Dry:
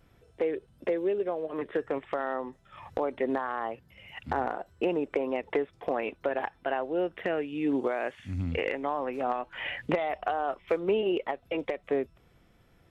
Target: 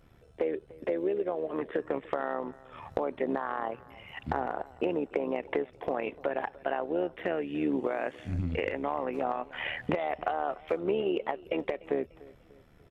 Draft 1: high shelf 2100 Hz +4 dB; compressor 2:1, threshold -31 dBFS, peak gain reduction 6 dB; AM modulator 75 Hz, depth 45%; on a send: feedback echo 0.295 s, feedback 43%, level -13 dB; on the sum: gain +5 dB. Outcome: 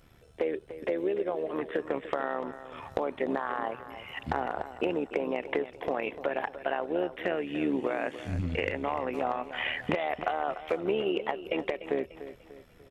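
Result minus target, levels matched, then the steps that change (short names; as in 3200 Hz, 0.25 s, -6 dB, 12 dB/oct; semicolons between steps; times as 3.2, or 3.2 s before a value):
echo-to-direct +8 dB; 4000 Hz band +4.0 dB
change: high shelf 2100 Hz -3.5 dB; change: feedback echo 0.295 s, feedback 43%, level -21 dB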